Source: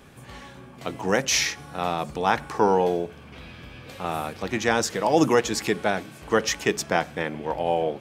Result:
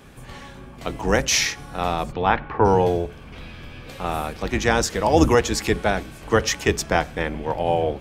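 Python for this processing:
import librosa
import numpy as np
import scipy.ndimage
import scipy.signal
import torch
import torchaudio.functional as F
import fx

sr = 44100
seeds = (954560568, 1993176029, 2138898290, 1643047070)

y = fx.octave_divider(x, sr, octaves=2, level_db=-1.0)
y = fx.lowpass(y, sr, hz=fx.line((2.11, 4300.0), (2.64, 2400.0)), slope=24, at=(2.11, 2.64), fade=0.02)
y = y * librosa.db_to_amplitude(2.5)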